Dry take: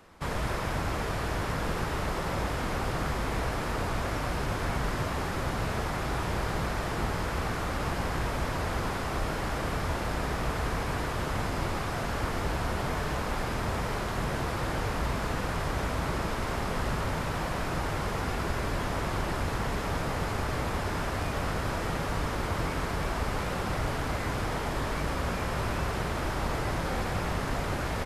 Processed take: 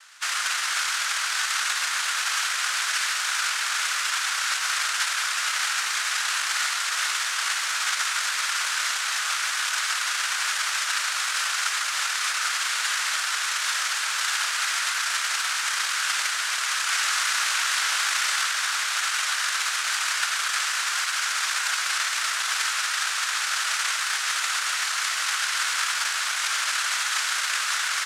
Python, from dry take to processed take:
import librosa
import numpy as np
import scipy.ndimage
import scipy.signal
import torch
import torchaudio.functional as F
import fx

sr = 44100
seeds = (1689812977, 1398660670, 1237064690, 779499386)

y = fx.noise_vocoder(x, sr, seeds[0], bands=1)
y = fx.highpass_res(y, sr, hz=1400.0, q=3.0)
y = fx.env_flatten(y, sr, amount_pct=70, at=(16.89, 18.45))
y = y * 10.0 ** (4.0 / 20.0)